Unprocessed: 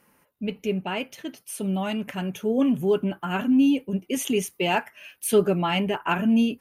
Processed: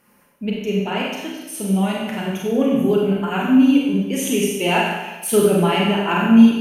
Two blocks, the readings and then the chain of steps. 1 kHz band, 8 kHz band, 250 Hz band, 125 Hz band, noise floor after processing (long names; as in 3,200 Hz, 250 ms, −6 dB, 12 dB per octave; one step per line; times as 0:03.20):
+6.0 dB, +6.5 dB, +7.5 dB, +7.0 dB, −56 dBFS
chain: four-comb reverb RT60 1.1 s, combs from 31 ms, DRR −3 dB
level +1.5 dB